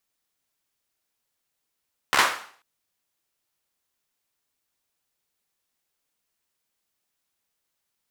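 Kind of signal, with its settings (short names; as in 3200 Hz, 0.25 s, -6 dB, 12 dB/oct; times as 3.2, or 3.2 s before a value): hand clap length 0.49 s, bursts 5, apart 14 ms, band 1200 Hz, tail 0.49 s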